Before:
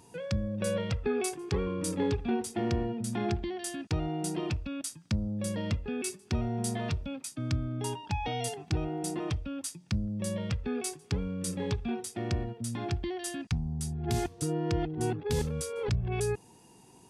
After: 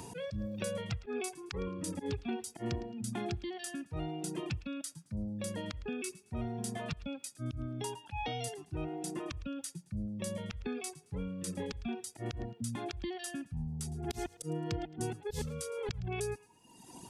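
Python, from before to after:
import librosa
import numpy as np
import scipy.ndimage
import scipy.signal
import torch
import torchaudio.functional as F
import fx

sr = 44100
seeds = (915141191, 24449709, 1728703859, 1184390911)

p1 = fx.auto_swell(x, sr, attack_ms=106.0)
p2 = fx.dereverb_blind(p1, sr, rt60_s=1.3)
p3 = p2 + fx.echo_thinned(p2, sr, ms=109, feedback_pct=25, hz=1000.0, wet_db=-19.0, dry=0)
p4 = fx.band_squash(p3, sr, depth_pct=70)
y = F.gain(torch.from_numpy(p4), -3.5).numpy()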